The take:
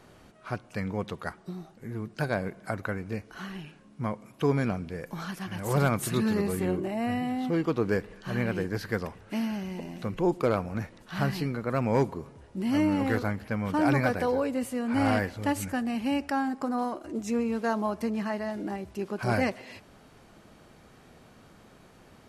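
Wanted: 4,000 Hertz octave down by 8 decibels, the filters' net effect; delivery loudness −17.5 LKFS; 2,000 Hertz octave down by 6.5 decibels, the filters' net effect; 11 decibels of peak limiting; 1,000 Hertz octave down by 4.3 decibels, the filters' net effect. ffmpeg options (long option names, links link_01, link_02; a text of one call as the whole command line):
ffmpeg -i in.wav -af "equalizer=frequency=1000:width_type=o:gain=-4.5,equalizer=frequency=2000:width_type=o:gain=-5,equalizer=frequency=4000:width_type=o:gain=-9,volume=17.5dB,alimiter=limit=-7.5dB:level=0:latency=1" out.wav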